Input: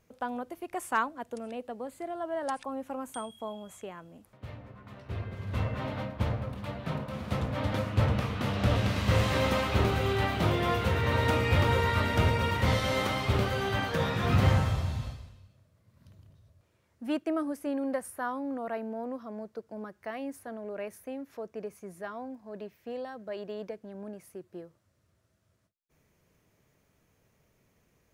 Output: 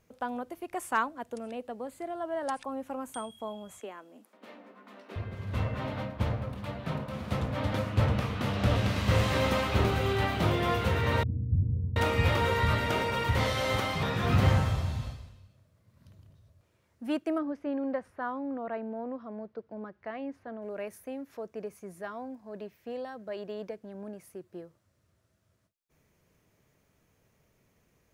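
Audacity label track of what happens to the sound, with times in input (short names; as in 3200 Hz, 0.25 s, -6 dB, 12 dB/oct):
3.800000	5.160000	steep high-pass 210 Hz 48 dB/oct
11.230000	14.030000	bands offset in time lows, highs 0.73 s, split 220 Hz
17.380000	20.620000	air absorption 230 m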